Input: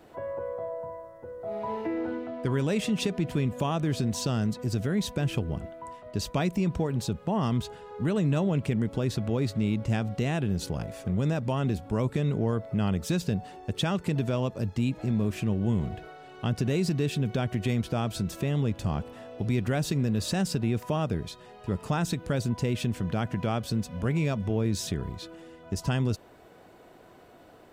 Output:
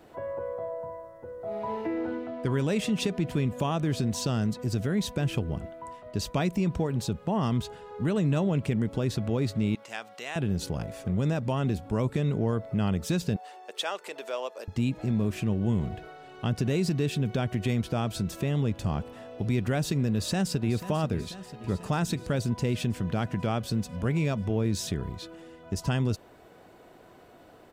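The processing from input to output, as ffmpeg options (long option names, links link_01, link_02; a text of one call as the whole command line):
ffmpeg -i in.wav -filter_complex "[0:a]asettb=1/sr,asplit=3[link_01][link_02][link_03];[link_01]atrim=end=9.754[link_04];[link_02]atrim=start=9.75:end=10.36,asetpts=PTS-STARTPTS,afade=type=in:duration=0.004:curve=qsin,afade=type=out:start_time=0.606:duration=0.004:curve=qsin,highpass=830[link_05];[link_03]atrim=start=10.356[link_06];[link_04][link_05]acrossfade=duration=0.004:curve1=hsin:curve2=qsin[link_07];[link_07][link_06]acrossfade=duration=0.004:curve1=qsin:curve2=hsin,asettb=1/sr,asplit=3[link_08][link_09][link_10];[link_08]atrim=end=13.364[link_11];[link_09]atrim=start=13.36:end=14.68,asetpts=PTS-STARTPTS,afade=type=in:duration=0.004:curve=qsin,afade=type=out:start_time=1.316:duration=0.004:curve=qsin,highpass=frequency=480:width=0.5412,highpass=frequency=480:width=1.3066[link_12];[link_10]atrim=start=14.676[link_13];[link_11][link_12]acrossfade=duration=0.004:curve1=hsin:curve2=qsin[link_14];[link_14][link_13]acrossfade=duration=0.004:curve1=qsin:curve2=hsin,asplit=2[link_15][link_16];[link_16]afade=type=in:start_time=20.06:duration=0.01,afade=type=out:start_time=20.76:duration=0.01,aecho=0:1:490|980|1470|1960|2450|2940|3430|3920|4410:0.211349|0.147944|0.103561|0.0724927|0.0507449|0.0355214|0.024865|0.0174055|0.0121838[link_17];[link_15][link_17]amix=inputs=2:normalize=0" out.wav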